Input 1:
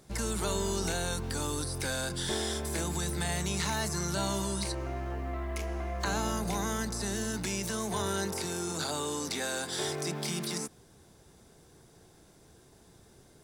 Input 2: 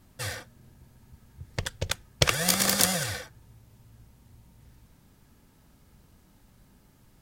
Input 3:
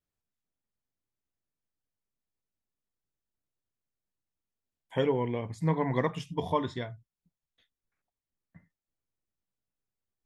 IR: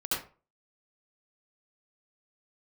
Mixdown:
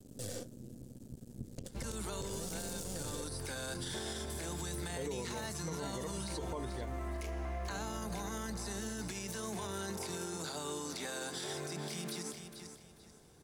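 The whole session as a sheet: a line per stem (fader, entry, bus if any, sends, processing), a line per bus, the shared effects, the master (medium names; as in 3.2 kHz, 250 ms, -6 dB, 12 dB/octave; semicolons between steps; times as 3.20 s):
-4.0 dB, 1.65 s, no send, echo send -11.5 dB, none
+0.5 dB, 0.00 s, no send, no echo send, half-wave rectifier; graphic EQ 125/250/500/1000/2000/8000 Hz +6/+11/+11/-10/-9/+9 dB; compression 3:1, threshold -32 dBFS, peak gain reduction 13.5 dB
-8.5 dB, 0.00 s, no send, no echo send, peaking EQ 430 Hz +5.5 dB 1 oct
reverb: none
echo: feedback delay 439 ms, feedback 27%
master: peak limiter -31 dBFS, peak gain reduction 19.5 dB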